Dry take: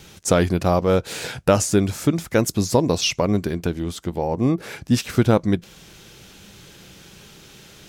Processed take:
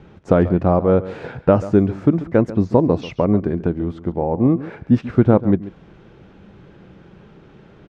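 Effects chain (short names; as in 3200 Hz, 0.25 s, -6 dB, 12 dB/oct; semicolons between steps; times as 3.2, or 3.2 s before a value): LPF 1300 Hz 12 dB/oct; bell 260 Hz +3 dB 1.8 oct; echo 0.138 s -16 dB; gain +1.5 dB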